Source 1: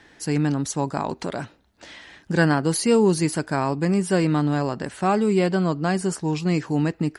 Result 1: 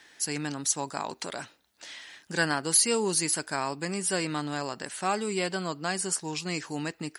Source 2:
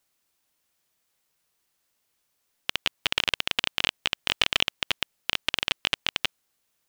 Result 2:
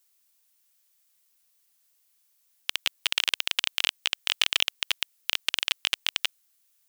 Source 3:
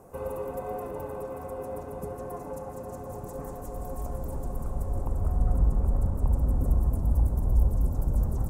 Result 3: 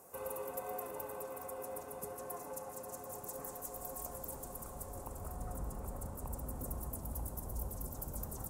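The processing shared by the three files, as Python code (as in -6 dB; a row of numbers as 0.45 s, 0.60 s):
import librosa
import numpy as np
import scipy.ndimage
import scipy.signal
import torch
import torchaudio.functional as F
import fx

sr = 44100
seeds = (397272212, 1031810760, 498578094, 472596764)

y = fx.tilt_eq(x, sr, slope=3.5)
y = F.gain(torch.from_numpy(y), -5.5).numpy()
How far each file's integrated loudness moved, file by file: -6.5 LU, 0.0 LU, -13.0 LU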